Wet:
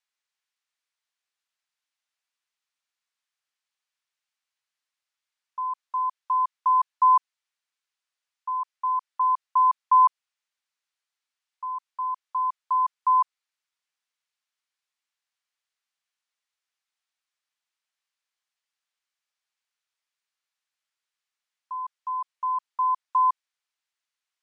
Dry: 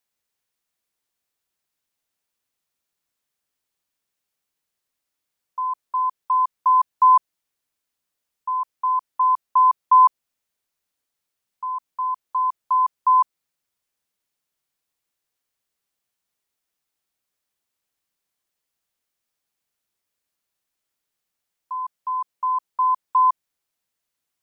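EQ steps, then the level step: high-pass 1.1 kHz 12 dB/octave; distance through air 68 m; 0.0 dB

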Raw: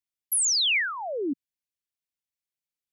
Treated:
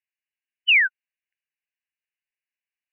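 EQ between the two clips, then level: brick-wall FIR band-pass 1.5–3 kHz; +8.0 dB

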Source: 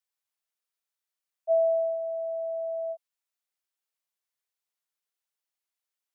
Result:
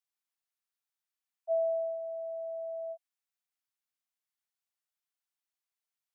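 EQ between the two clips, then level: elliptic high-pass 680 Hz; -3.5 dB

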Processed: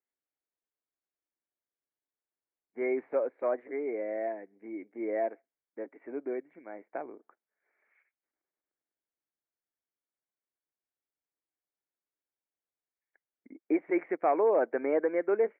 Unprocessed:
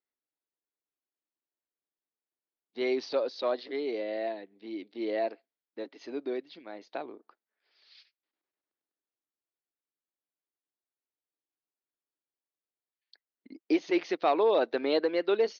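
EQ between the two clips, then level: rippled Chebyshev low-pass 2.3 kHz, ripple 3 dB; 0.0 dB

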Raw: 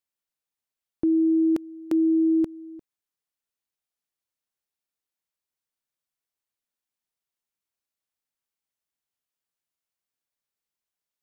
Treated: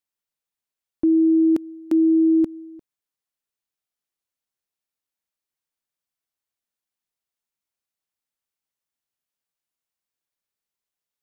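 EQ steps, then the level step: dynamic bell 270 Hz, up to +6 dB, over -37 dBFS, Q 1.9; 0.0 dB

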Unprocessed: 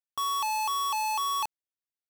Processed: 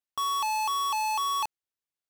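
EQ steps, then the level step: treble shelf 10 kHz -4.5 dB; +1.0 dB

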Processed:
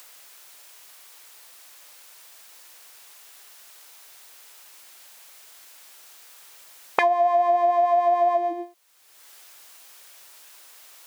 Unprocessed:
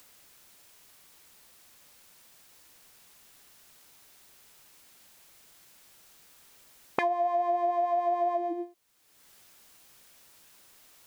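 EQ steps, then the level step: high-pass 550 Hz 12 dB/octave; +9.0 dB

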